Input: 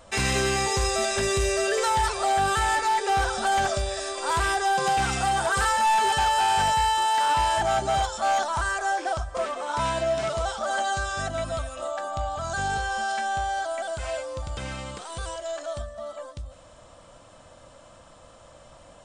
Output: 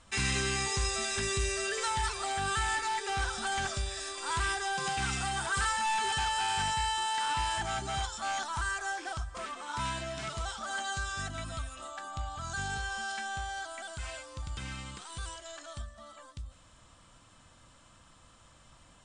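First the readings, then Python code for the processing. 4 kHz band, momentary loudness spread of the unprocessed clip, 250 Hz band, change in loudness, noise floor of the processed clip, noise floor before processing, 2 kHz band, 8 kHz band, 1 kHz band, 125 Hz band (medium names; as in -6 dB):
-4.5 dB, 12 LU, -7.5 dB, -8.0 dB, -59 dBFS, -51 dBFS, -5.5 dB, -4.5 dB, -10.5 dB, -5.5 dB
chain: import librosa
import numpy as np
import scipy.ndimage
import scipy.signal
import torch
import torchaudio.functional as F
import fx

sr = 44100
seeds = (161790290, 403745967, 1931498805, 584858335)

y = scipy.signal.sosfilt(scipy.signal.cheby1(6, 1.0, 10000.0, 'lowpass', fs=sr, output='sos'), x)
y = fx.peak_eq(y, sr, hz=580.0, db=-14.5, octaves=0.89)
y = y * 10.0 ** (-4.0 / 20.0)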